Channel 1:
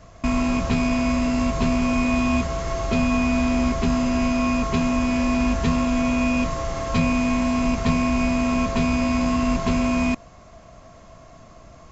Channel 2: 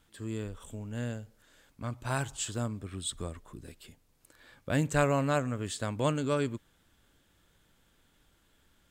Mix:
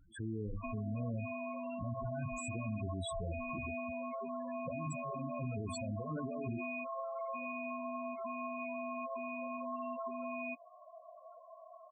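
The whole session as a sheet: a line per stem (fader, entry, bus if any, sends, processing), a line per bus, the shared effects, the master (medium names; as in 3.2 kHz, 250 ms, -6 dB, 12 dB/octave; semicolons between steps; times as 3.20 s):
-3.5 dB, 0.40 s, no send, high-pass 480 Hz 12 dB/octave; compression 6:1, threshold -33 dBFS, peak gain reduction 10 dB
+2.0 dB, 0.00 s, no send, hum notches 50/100/150/200/250/300/350/400/450/500 Hz; compressor with a negative ratio -38 dBFS, ratio -1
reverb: none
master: loudest bins only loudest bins 8; peak limiter -31.5 dBFS, peak gain reduction 7 dB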